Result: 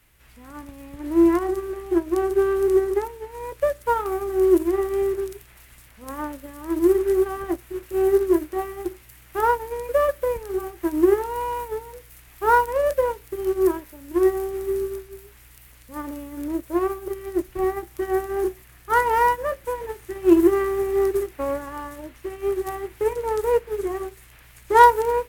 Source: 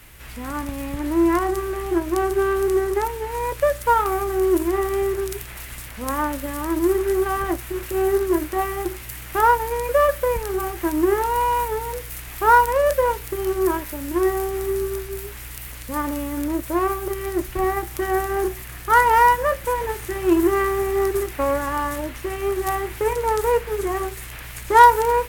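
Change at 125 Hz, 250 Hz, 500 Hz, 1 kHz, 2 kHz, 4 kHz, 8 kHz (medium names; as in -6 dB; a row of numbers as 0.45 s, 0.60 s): -8.0 dB, +0.5 dB, 0.0 dB, -4.0 dB, -5.5 dB, no reading, -8.5 dB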